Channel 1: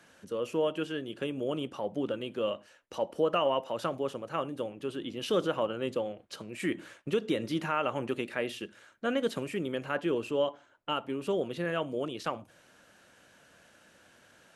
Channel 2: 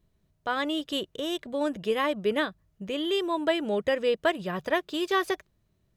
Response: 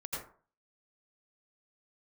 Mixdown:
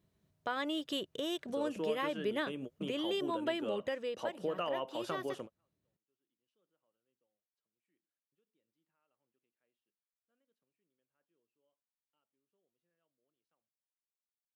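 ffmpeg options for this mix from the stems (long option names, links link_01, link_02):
-filter_complex "[0:a]agate=range=-33dB:threshold=-49dB:ratio=3:detection=peak,adelay=1250,volume=-3.5dB[link_01];[1:a]volume=-2.5dB,afade=type=out:start_time=3.61:duration=0.55:silence=0.316228,asplit=2[link_02][link_03];[link_03]apad=whole_len=697093[link_04];[link_01][link_04]sidechaingate=range=-50dB:threshold=-54dB:ratio=16:detection=peak[link_05];[link_05][link_02]amix=inputs=2:normalize=0,highpass=98,acompressor=threshold=-36dB:ratio=2"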